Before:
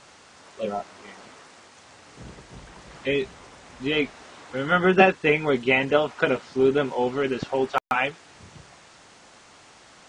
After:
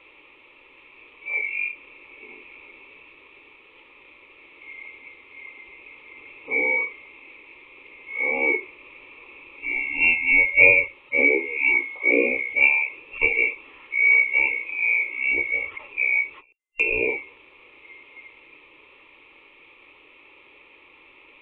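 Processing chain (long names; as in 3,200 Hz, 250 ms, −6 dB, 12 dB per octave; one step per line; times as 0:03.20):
band-splitting scrambler in four parts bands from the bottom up 2341
low shelf with overshoot 360 Hz −10 dB, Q 1.5
phaser with its sweep stopped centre 2,200 Hz, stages 8
change of speed 0.471×
every ending faded ahead of time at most 230 dB per second
level +1 dB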